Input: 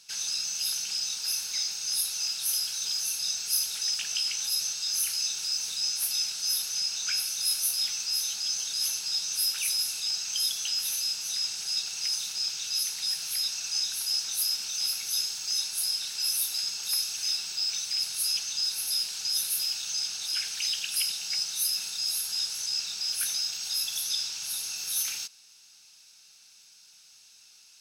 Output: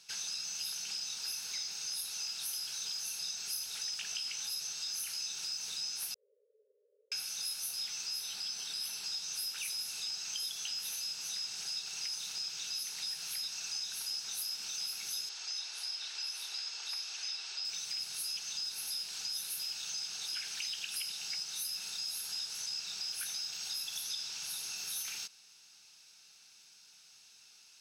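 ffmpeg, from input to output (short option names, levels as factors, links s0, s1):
-filter_complex "[0:a]asettb=1/sr,asplit=3[s0][s1][s2];[s0]atrim=end=6.144[s3];[s1]atrim=start=6.14:end=7.12,asetpts=PTS-STARTPTS,afade=t=in:d=0.004:c=qsin,afade=t=out:st=0.976:d=0.004:c=qsin,asuperpass=centerf=490:order=20:qfactor=2.6[s4];[s2]atrim=start=7.116[s5];[s3][s4]acrossfade=d=0.004:c1=hsin:c2=qsin[s6];[s6][s5]acrossfade=d=0.004:c1=qsin:c2=hsin,asettb=1/sr,asplit=3[s7][s8][s9];[s7]atrim=end=8.194[s10];[s8]atrim=start=8.19:end=9.04,asetpts=PTS-STARTPTS,afade=t=in:d=0.004:c=qsin,afade=t=out:st=0.846:d=0.004:c=qsin,bandreject=f=6600:w=5.1[s11];[s9]atrim=start=9.036[s12];[s10][s11]acrossfade=d=0.004:c1=hsin:c2=qsin[s13];[s13][s12]acrossfade=d=0.004:c1=qsin:c2=hsin,asettb=1/sr,asplit=3[s14][s15][s16];[s14]atrim=end=15.294[s17];[s15]atrim=start=15.29:end=17.65,asetpts=PTS-STARTPTS,afade=t=in:d=0.004:c=qsin,afade=t=out:st=2.356:d=0.004:c=qsin,highpass=470,lowpass=5500[s18];[s16]atrim=start=17.646[s19];[s17][s18]acrossfade=d=0.004:c1=hsin:c2=qsin[s20];[s20][s19]acrossfade=d=0.004:c1=qsin:c2=hsin,highpass=93,highshelf=f=4000:g=-6.5,acompressor=threshold=0.0141:ratio=3"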